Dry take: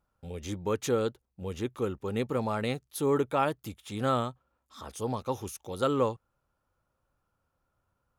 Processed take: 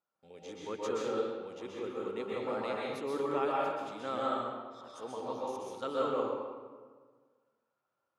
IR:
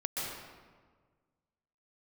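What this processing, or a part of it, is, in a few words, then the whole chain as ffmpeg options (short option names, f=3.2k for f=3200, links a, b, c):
supermarket ceiling speaker: -filter_complex "[0:a]highpass=310,lowpass=6.1k[a];[1:a]atrim=start_sample=2205[b];[a][b]afir=irnorm=-1:irlink=0,volume=-8dB"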